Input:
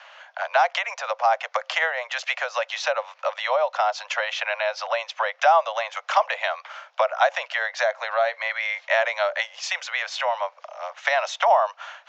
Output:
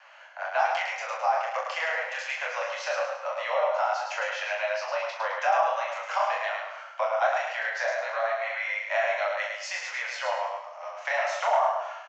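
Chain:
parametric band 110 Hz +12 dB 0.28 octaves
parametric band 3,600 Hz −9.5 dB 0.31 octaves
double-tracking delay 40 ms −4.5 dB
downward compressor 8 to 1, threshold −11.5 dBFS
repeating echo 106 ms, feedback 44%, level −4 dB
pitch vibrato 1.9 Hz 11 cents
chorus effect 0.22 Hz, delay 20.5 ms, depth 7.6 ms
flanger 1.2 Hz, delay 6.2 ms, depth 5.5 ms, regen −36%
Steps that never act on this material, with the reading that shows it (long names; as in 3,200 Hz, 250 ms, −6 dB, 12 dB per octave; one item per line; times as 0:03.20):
parametric band 110 Hz: nothing at its input below 450 Hz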